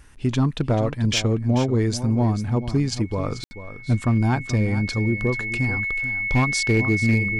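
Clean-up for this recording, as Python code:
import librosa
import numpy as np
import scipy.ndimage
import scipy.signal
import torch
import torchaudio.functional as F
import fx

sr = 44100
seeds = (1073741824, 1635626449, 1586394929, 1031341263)

y = fx.fix_declip(x, sr, threshold_db=-12.5)
y = fx.notch(y, sr, hz=2200.0, q=30.0)
y = fx.fix_ambience(y, sr, seeds[0], print_start_s=0.0, print_end_s=0.5, start_s=3.44, end_s=3.51)
y = fx.fix_echo_inverse(y, sr, delay_ms=437, level_db=-12.5)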